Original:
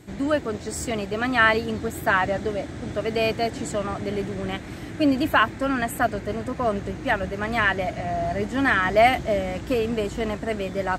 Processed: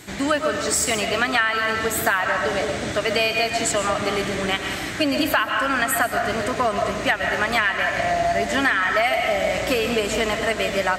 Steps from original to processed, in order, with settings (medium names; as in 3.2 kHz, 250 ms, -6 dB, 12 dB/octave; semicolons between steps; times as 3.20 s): tilt shelf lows -7.5 dB, about 730 Hz; reverberation RT60 0.95 s, pre-delay 85 ms, DRR 5.5 dB; compression 8:1, threshold -24 dBFS, peak gain reduction 16 dB; trim +7 dB